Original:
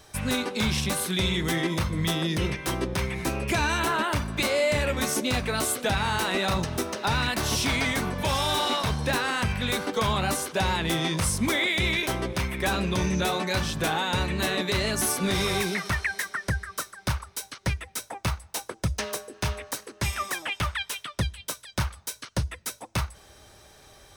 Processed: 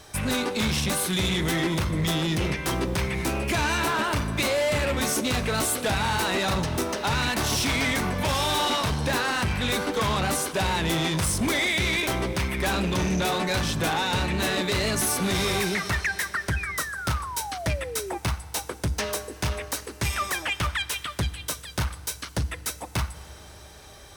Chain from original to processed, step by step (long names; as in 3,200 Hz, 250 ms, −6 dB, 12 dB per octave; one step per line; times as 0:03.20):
harmonic generator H 5 −14 dB, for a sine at −15.5 dBFS
feedback delay network reverb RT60 3 s, low-frequency decay 1.3×, high-frequency decay 0.85×, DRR 15.5 dB
sound drawn into the spectrogram fall, 0:16.56–0:18.18, 340–2,600 Hz −33 dBFS
level −1.5 dB